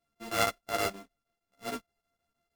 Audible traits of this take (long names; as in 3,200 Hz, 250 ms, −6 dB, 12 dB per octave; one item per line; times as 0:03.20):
a buzz of ramps at a fixed pitch in blocks of 64 samples
chopped level 6.4 Hz, depth 65%, duty 85%
a shimmering, thickened sound